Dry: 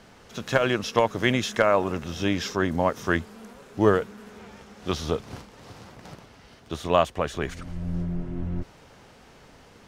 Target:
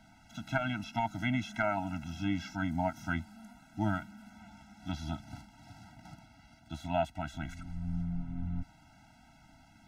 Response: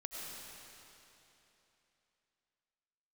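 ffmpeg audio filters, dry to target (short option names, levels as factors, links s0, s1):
-filter_complex "[0:a]acrossover=split=3000[s0][s1];[s1]acompressor=threshold=0.00891:ratio=4:attack=1:release=60[s2];[s0][s2]amix=inputs=2:normalize=0,afftfilt=real='re*eq(mod(floor(b*sr/1024/320),2),0)':imag='im*eq(mod(floor(b*sr/1024/320),2),0)':win_size=1024:overlap=0.75,volume=0.501"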